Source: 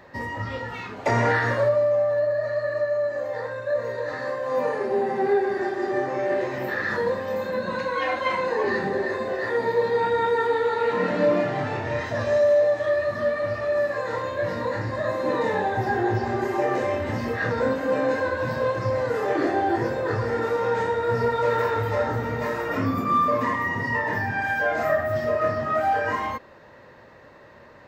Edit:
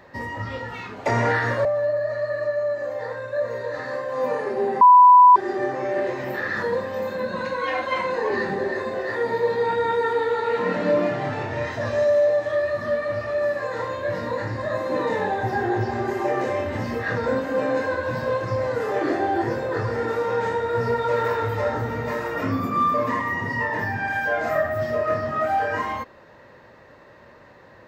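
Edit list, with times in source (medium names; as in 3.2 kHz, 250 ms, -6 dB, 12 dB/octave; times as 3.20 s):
1.65–1.99 s: delete
5.15–5.70 s: bleep 992 Hz -7 dBFS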